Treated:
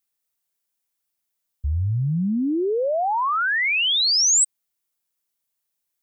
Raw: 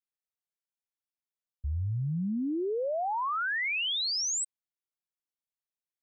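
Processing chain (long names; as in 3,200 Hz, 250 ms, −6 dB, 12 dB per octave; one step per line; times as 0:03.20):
high-shelf EQ 7,000 Hz +10.5 dB
level +8.5 dB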